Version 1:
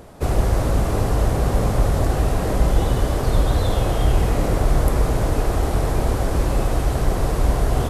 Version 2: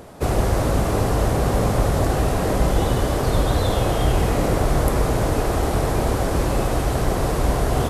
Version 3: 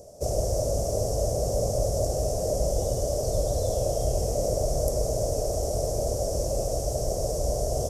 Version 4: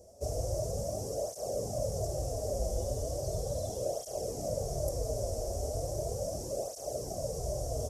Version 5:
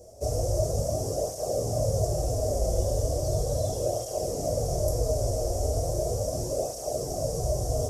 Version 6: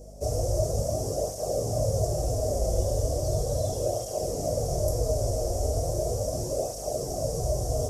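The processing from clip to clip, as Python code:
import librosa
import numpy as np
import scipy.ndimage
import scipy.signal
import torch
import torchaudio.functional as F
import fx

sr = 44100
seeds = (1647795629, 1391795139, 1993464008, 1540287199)

y1 = fx.low_shelf(x, sr, hz=65.0, db=-9.0)
y1 = y1 * librosa.db_to_amplitude(2.5)
y2 = fx.curve_eq(y1, sr, hz=(110.0, 170.0, 310.0, 610.0, 880.0, 1400.0, 2000.0, 3900.0, 5600.0, 11000.0), db=(0, -5, -8, 10, -13, -22, -21, -12, 13, 3))
y2 = y2 * librosa.db_to_amplitude(-8.0)
y3 = fx.flanger_cancel(y2, sr, hz=0.37, depth_ms=7.2)
y3 = y3 * librosa.db_to_amplitude(-5.0)
y4 = fx.room_shoebox(y3, sr, seeds[0], volume_m3=52.0, walls='mixed', distance_m=0.43)
y4 = y4 * librosa.db_to_amplitude(5.0)
y5 = fx.add_hum(y4, sr, base_hz=50, snr_db=19)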